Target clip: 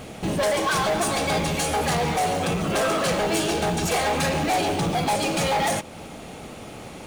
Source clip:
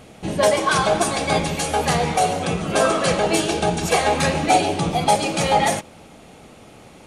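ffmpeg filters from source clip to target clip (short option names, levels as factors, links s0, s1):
-filter_complex "[0:a]asplit=2[s0][s1];[s1]acompressor=threshold=0.0282:ratio=6,volume=1[s2];[s0][s2]amix=inputs=2:normalize=0,asoftclip=type=tanh:threshold=0.106,acrusher=bits=6:mode=log:mix=0:aa=0.000001"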